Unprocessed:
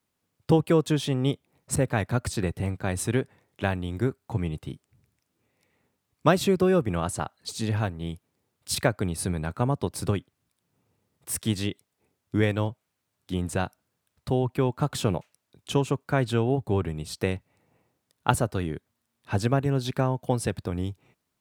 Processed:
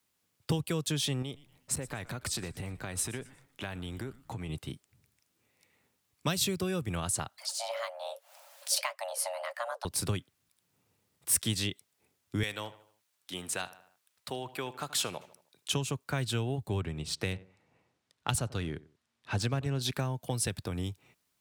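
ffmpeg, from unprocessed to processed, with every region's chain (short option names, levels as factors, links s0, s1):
-filter_complex "[0:a]asettb=1/sr,asplit=3[s0][s1][s2];[s0]atrim=end=1.224[s3];[s1]atrim=start=1.22:end=4.49,asetpts=PTS-STARTPTS,afade=t=in:d=0.004:c=qsin,afade=t=out:st=3.266:d=0.004:c=qsin,acompressor=threshold=0.0282:ratio=4:attack=3.2:release=140:knee=1:detection=peak,asplit=4[s4][s5][s6][s7];[s5]adelay=119,afreqshift=-130,volume=0.112[s8];[s6]adelay=238,afreqshift=-260,volume=0.0417[s9];[s7]adelay=357,afreqshift=-390,volume=0.0153[s10];[s4][s8][s9][s10]amix=inputs=4:normalize=0,atrim=end_sample=144207[s11];[s2]atrim=start=4.486[s12];[s3][s11]acrossfade=d=0.004:c1=hsin:c2=qsin[s13];[s13][s12]acrossfade=d=0.004:c1=qsin:c2=hsin,asettb=1/sr,asplit=3[s14][s15][s16];[s14]atrim=end=7.384[s17];[s15]atrim=start=7.38:end=9.85,asetpts=PTS-STARTPTS,afade=t=in:d=0.004:c=qsin,afade=t=out:st=2.466:d=0.004:c=qsin,afreqshift=460,acompressor=mode=upward:threshold=0.0282:ratio=2.5:attack=3.2:release=140:knee=2.83:detection=peak,flanger=delay=1.5:depth=8.3:regen=-58:speed=1.8:shape=sinusoidal[s18];[s16]atrim=start=9.846[s19];[s17][s18]acrossfade=d=0.004:c1=hsin:c2=qsin[s20];[s20][s19]acrossfade=d=0.004:c1=qsin:c2=hsin,asettb=1/sr,asplit=3[s21][s22][s23];[s21]atrim=end=12.434[s24];[s22]atrim=start=12.43:end=15.73,asetpts=PTS-STARTPTS,afade=t=in:d=0.004:c=qsin,afade=t=out:st=3.296:d=0.004:c=qsin,highpass=f=730:p=1,asplit=2[s25][s26];[s26]adelay=77,lowpass=f=4400:p=1,volume=0.133,asplit=2[s27][s28];[s28]adelay=77,lowpass=f=4400:p=1,volume=0.46,asplit=2[s29][s30];[s30]adelay=77,lowpass=f=4400:p=1,volume=0.46,asplit=2[s31][s32];[s32]adelay=77,lowpass=f=4400:p=1,volume=0.46[s33];[s25][s27][s29][s31][s33]amix=inputs=5:normalize=0,atrim=end_sample=145530[s34];[s23]atrim=start=15.726[s35];[s24][s34]acrossfade=d=0.004:c1=hsin:c2=qsin[s36];[s36][s35]acrossfade=d=0.004:c1=qsin:c2=hsin,asettb=1/sr,asplit=3[s37][s38][s39];[s37]atrim=end=16.814[s40];[s38]atrim=start=16.81:end=19.82,asetpts=PTS-STARTPTS,afade=t=in:d=0.004:c=qsin,afade=t=out:st=3.006:d=0.004:c=qsin,adynamicsmooth=sensitivity=8:basefreq=6200,asplit=2[s41][s42];[s42]adelay=91,lowpass=f=1300:p=1,volume=0.1,asplit=2[s43][s44];[s44]adelay=91,lowpass=f=1300:p=1,volume=0.28[s45];[s41][s43][s45]amix=inputs=3:normalize=0,atrim=end_sample=132741[s46];[s39]atrim=start=19.816[s47];[s40][s46]acrossfade=d=0.004:c1=hsin:c2=qsin[s48];[s48][s47]acrossfade=d=0.004:c1=qsin:c2=hsin,tiltshelf=f=1400:g=-4.5,acrossover=split=160|3000[s49][s50][s51];[s50]acompressor=threshold=0.02:ratio=4[s52];[s49][s52][s51]amix=inputs=3:normalize=0"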